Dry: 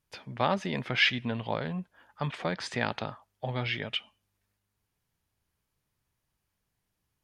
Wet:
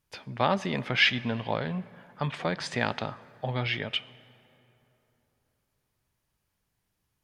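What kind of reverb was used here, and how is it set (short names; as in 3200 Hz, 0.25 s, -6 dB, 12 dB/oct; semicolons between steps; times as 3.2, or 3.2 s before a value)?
plate-style reverb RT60 3.4 s, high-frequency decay 0.55×, DRR 18.5 dB; gain +2 dB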